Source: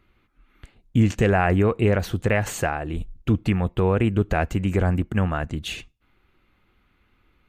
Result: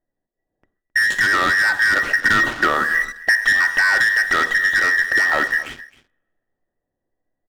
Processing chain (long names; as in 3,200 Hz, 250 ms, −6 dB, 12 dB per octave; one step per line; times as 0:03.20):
frequency inversion band by band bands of 2,000 Hz
low-pass that shuts in the quiet parts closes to 390 Hz, open at −16.5 dBFS
0:01.76–0:02.95: low-pass filter 2,600 Hz 12 dB per octave
coupled-rooms reverb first 0.51 s, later 1.8 s, from −24 dB, DRR 11 dB
leveller curve on the samples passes 3
downward compressor, threshold −15 dBFS, peak gain reduction 6 dB
single-tap delay 265 ms −18.5 dB
speech leveller 2 s
level +1 dB